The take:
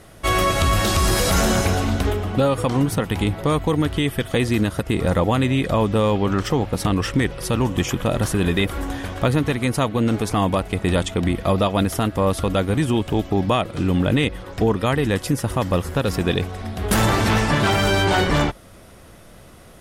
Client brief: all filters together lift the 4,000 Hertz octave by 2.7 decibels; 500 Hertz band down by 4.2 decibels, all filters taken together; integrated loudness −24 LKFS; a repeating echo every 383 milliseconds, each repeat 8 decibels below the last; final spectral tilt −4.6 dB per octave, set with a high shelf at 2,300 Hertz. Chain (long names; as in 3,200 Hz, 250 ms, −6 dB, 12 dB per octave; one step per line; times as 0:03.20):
parametric band 500 Hz −5 dB
high-shelf EQ 2,300 Hz −5 dB
parametric band 4,000 Hz +8 dB
repeating echo 383 ms, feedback 40%, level −8 dB
level −3 dB